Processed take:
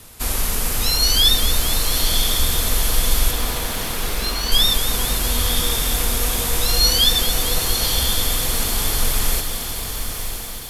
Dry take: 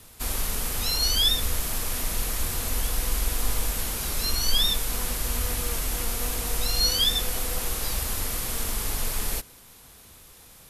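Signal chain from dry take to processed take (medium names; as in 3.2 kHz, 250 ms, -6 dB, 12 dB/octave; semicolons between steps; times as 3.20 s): 3.31–4.52 s: band-pass 150–3900 Hz; on a send: echo that smears into a reverb 1023 ms, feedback 46%, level -7 dB; on the sum: bit-crushed delay 226 ms, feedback 80%, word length 7-bit, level -11 dB; trim +6.5 dB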